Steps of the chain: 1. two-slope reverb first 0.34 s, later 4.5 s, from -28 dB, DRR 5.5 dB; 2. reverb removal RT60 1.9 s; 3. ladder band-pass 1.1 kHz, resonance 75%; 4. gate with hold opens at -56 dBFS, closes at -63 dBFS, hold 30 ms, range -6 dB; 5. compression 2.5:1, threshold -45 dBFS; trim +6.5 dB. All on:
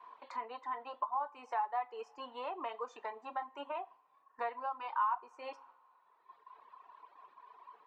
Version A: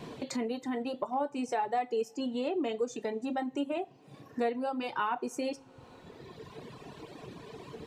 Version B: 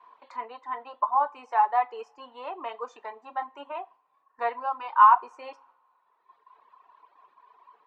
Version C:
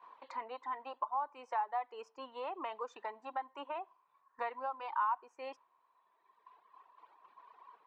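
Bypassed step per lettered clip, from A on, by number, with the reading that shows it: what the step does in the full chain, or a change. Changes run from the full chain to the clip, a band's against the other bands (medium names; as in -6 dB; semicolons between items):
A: 3, 250 Hz band +16.0 dB; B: 5, mean gain reduction 6.5 dB; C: 1, momentary loudness spread change -10 LU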